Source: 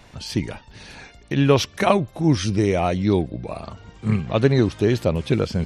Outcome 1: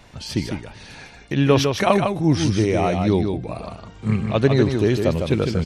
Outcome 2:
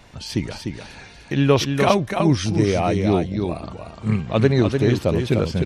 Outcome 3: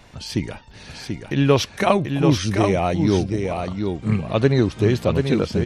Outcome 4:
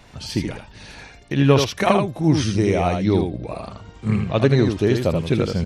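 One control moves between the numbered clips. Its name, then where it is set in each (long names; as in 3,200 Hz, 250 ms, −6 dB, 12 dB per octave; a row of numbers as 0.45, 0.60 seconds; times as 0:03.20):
single-tap delay, delay time: 154, 299, 736, 80 milliseconds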